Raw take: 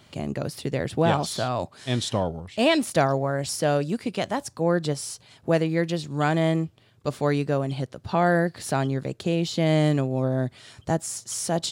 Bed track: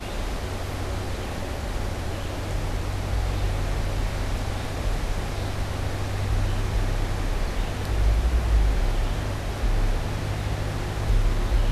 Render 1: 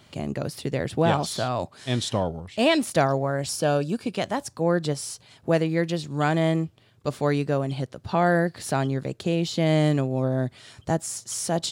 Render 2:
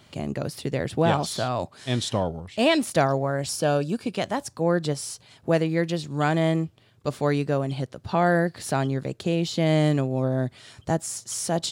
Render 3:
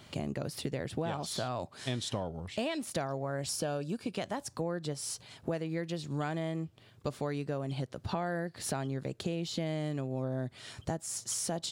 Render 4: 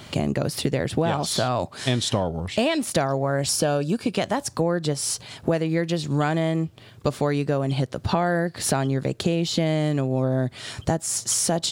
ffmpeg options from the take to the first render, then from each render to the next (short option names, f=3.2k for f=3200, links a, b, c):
-filter_complex "[0:a]asettb=1/sr,asplit=3[a][b][c];[a]atrim=end=3.524[d];[b]atrim=start=3.52:end=4.14,asetpts=PTS-STARTPTS,afade=t=in:d=0.004:c=qsin,afade=t=out:st=0.616:d=0.004:c=qsin,asuperstop=centerf=2000:order=12:qfactor=5.9[e];[c]atrim=start=4.136[f];[d][e]acrossfade=d=0.004:c1=hsin:c2=qsin[g];[g][f]acrossfade=d=0.004:c1=qsin:c2=hsin"
-af anull
-af "acompressor=threshold=-32dB:ratio=6"
-af "volume=12dB"